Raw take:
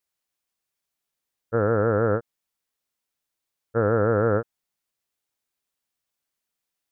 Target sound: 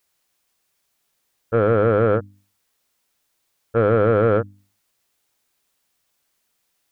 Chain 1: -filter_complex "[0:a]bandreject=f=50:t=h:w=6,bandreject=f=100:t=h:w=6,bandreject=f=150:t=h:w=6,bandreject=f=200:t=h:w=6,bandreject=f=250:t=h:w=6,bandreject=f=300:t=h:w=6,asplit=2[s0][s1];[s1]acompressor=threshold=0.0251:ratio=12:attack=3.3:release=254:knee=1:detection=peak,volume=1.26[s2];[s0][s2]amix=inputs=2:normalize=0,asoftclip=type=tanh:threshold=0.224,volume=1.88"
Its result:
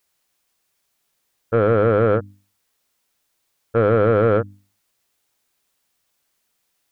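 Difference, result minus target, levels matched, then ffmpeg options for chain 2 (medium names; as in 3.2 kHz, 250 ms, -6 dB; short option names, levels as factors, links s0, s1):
compression: peak gain reduction -8.5 dB
-filter_complex "[0:a]bandreject=f=50:t=h:w=6,bandreject=f=100:t=h:w=6,bandreject=f=150:t=h:w=6,bandreject=f=200:t=h:w=6,bandreject=f=250:t=h:w=6,bandreject=f=300:t=h:w=6,asplit=2[s0][s1];[s1]acompressor=threshold=0.00841:ratio=12:attack=3.3:release=254:knee=1:detection=peak,volume=1.26[s2];[s0][s2]amix=inputs=2:normalize=0,asoftclip=type=tanh:threshold=0.224,volume=1.88"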